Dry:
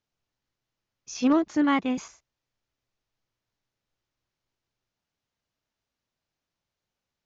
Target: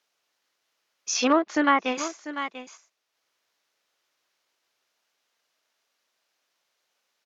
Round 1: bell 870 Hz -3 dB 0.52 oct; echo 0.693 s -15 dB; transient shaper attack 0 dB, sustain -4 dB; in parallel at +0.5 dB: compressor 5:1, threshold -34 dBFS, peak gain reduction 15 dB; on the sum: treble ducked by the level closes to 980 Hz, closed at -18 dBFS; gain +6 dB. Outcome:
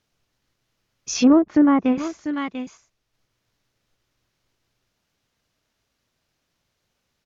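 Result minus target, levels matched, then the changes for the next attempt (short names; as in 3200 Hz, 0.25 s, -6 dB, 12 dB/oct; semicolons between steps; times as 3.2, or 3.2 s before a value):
500 Hz band -3.5 dB
add first: HPF 570 Hz 12 dB/oct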